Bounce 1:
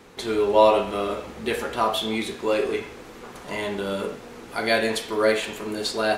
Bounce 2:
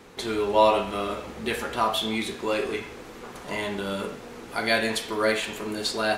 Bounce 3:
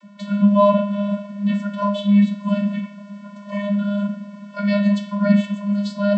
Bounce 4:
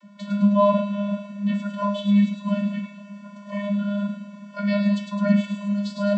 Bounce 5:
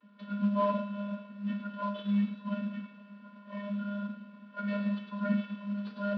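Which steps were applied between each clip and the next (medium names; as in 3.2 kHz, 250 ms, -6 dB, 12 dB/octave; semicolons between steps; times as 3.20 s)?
dynamic bell 460 Hz, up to -5 dB, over -32 dBFS, Q 1.2
octave divider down 1 oct, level +2 dB; vocoder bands 32, square 203 Hz; trim +8 dB
feedback echo behind a high-pass 105 ms, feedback 57%, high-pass 3.2 kHz, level -4 dB; trim -3.5 dB
CVSD coder 32 kbps; cabinet simulation 140–3300 Hz, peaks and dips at 170 Hz -8 dB, 260 Hz +8 dB, 450 Hz +10 dB, 650 Hz -6 dB, 1.4 kHz +6 dB, 2.1 kHz -6 dB; trim -9 dB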